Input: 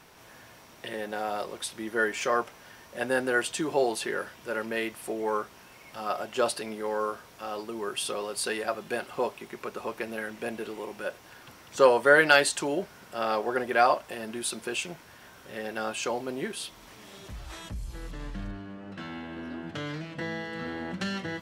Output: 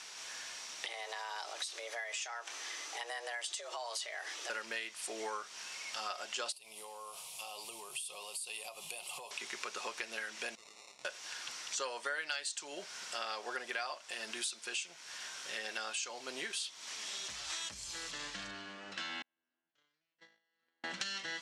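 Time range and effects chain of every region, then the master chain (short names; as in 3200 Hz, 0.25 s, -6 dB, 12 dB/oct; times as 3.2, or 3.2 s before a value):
0.85–4.5 frequency shift +230 Hz + compressor 3:1, threshold -41 dBFS + low shelf 350 Hz +12 dB
6.52–9.31 EQ curve 100 Hz 0 dB, 150 Hz +8 dB, 240 Hz -12 dB, 740 Hz 0 dB, 1100 Hz -3 dB, 1600 Hz -26 dB, 2500 Hz 0 dB, 6000 Hz -7 dB, 11000 Hz +15 dB + compressor 12:1, threshold -41 dBFS
10.55–11.05 passive tone stack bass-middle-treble 5-5-5 + compressor 4:1, threshold -52 dBFS + sample-rate reducer 1600 Hz
19.22–20.84 gate -30 dBFS, range -46 dB + high shelf 2200 Hz -5.5 dB
whole clip: LPF 7200 Hz 24 dB/oct; differentiator; compressor 6:1, threshold -54 dBFS; gain +16.5 dB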